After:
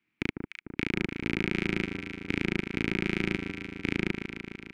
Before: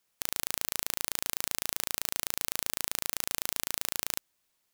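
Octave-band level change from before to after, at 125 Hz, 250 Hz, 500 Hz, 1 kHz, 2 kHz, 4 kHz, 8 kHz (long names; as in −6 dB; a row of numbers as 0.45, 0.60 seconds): +17.0, +20.5, +11.0, −2.0, +8.0, −4.5, −22.5 decibels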